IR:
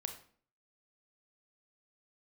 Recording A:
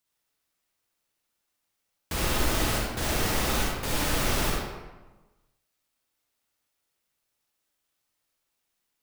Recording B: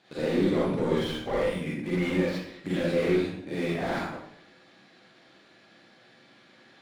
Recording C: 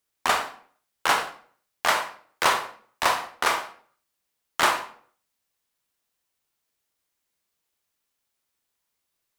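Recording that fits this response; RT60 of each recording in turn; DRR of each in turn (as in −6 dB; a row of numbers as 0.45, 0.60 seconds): C; 1.2, 0.70, 0.50 seconds; −3.0, −7.0, 5.5 decibels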